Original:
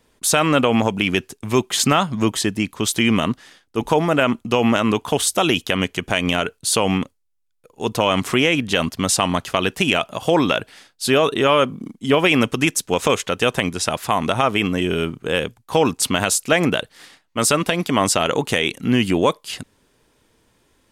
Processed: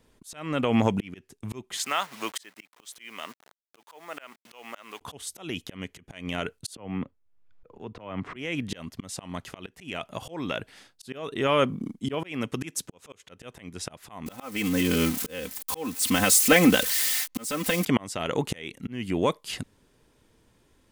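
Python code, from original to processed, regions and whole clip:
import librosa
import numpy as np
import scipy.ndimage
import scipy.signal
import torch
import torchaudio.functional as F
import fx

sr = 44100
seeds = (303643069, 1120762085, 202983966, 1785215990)

y = fx.chain(x, sr, fx.delta_hold(step_db=-31.5),
    fx.bessel_highpass(hz=960.0, order=2), at=(1.77, 5.01))
y = fx.chain(y, sr, fx.lowpass(hz=2000.0, slope=12),
    fx.band_squash(depth_pct=100), at=(6.75, 8.36))
y = fx.chain(y, sr, fx.highpass(hz=78.0, slope=6),
    fx.auto_swell(attack_ms=237.0), at=(11.99, 13.29))
y = fx.chain(y, sr, fx.crossing_spikes(level_db=-15.0),
    fx.comb(ms=3.9, depth=0.82), at=(14.26, 17.85))
y = fx.dynamic_eq(y, sr, hz=2000.0, q=4.0, threshold_db=-40.0, ratio=4.0, max_db=5)
y = fx.auto_swell(y, sr, attack_ms=617.0)
y = fx.low_shelf(y, sr, hz=360.0, db=5.5)
y = F.gain(torch.from_numpy(y), -5.0).numpy()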